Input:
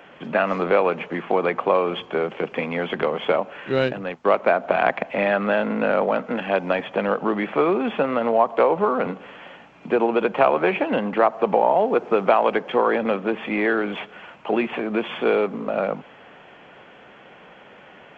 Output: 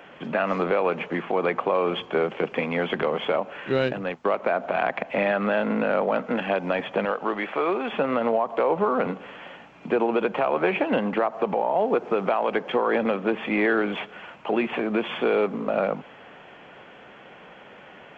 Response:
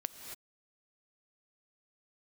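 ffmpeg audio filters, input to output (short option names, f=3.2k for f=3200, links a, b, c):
-filter_complex "[0:a]asettb=1/sr,asplit=3[a][b][c];[a]atrim=end=7.054[d];[b]atrim=start=7.05:end=7.93,asetpts=PTS-STARTPTS,afade=t=in:d=0.004:c=qsin,afade=t=out:st=0.876:d=0.004:c=qsin,equalizer=f=160:w=0.58:g=-11[e];[c]atrim=start=7.926[f];[d][e]acrossfade=d=0.004:c1=hsin:c2=qsin[g];[g][f]acrossfade=d=0.004:c1=qsin:c2=hsin,alimiter=limit=-12.5dB:level=0:latency=1:release=107"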